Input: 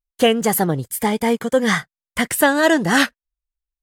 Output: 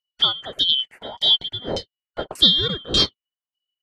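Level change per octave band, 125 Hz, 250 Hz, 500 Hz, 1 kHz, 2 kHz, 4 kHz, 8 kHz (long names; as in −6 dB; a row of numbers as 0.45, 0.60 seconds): −6.5, −14.0, −13.0, −13.5, −19.0, +11.0, −13.5 decibels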